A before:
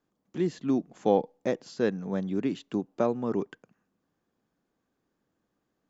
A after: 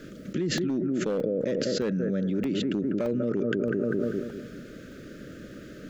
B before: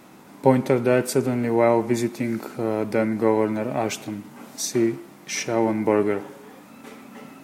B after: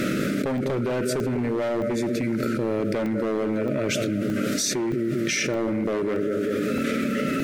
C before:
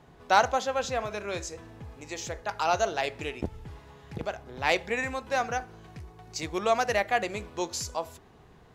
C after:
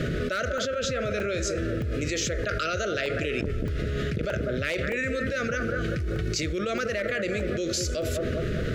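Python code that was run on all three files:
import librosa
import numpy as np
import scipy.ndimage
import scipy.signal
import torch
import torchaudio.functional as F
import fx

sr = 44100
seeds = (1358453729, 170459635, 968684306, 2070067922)

p1 = scipy.signal.sosfilt(scipy.signal.ellip(3, 1.0, 40, [610.0, 1300.0], 'bandstop', fs=sr, output='sos'), x)
p2 = fx.high_shelf(p1, sr, hz=6100.0, db=-11.0)
p3 = p2 + fx.echo_bbd(p2, sr, ms=197, stages=2048, feedback_pct=36, wet_db=-11.0, dry=0)
p4 = np.clip(10.0 ** (20.0 / 20.0) * p3, -1.0, 1.0) / 10.0 ** (20.0 / 20.0)
p5 = fx.buffer_crackle(p4, sr, first_s=0.58, period_s=0.62, block=64, kind='zero')
p6 = fx.env_flatten(p5, sr, amount_pct=100)
y = F.gain(torch.from_numpy(p6), -3.5).numpy()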